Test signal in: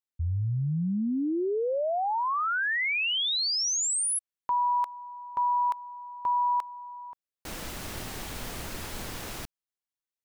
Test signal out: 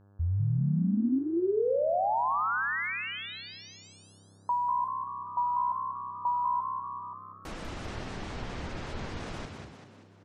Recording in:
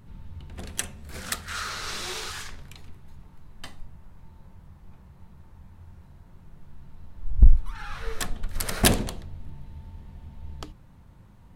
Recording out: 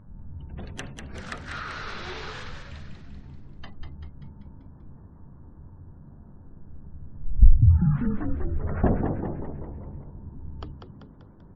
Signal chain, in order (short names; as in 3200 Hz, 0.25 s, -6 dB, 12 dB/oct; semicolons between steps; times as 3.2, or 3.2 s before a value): treble ducked by the level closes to 930 Hz, closed at -23 dBFS; spectral gate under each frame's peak -30 dB strong; high shelf 2700 Hz -8.5 dB; buzz 100 Hz, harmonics 17, -59 dBFS -7 dB/oct; frequency-shifting echo 0.194 s, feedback 50%, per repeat +64 Hz, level -6 dB